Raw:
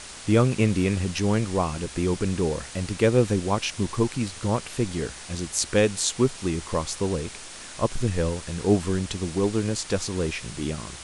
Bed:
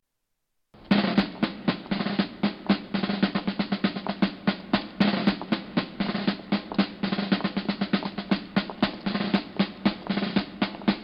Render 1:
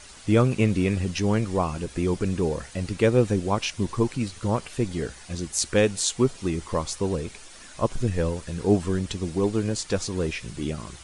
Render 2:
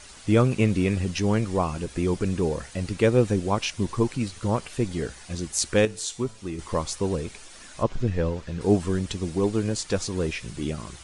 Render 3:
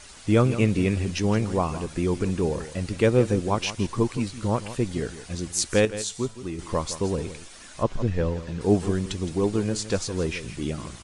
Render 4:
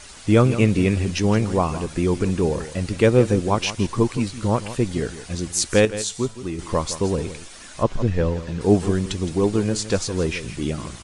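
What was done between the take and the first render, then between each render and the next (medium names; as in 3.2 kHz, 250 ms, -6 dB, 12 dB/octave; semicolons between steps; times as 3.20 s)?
noise reduction 9 dB, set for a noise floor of -41 dBFS
5.85–6.59 s: feedback comb 110 Hz, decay 0.47 s; 7.83–8.61 s: distance through air 110 m
delay 165 ms -13.5 dB
trim +4 dB; peak limiter -3 dBFS, peak gain reduction 1.5 dB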